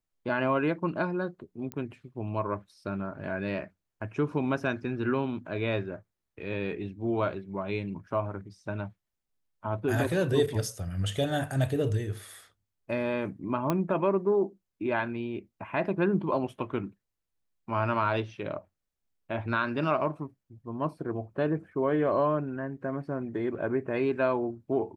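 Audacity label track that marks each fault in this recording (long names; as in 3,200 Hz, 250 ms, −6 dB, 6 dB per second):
1.720000	1.720000	click −21 dBFS
13.700000	13.700000	click −14 dBFS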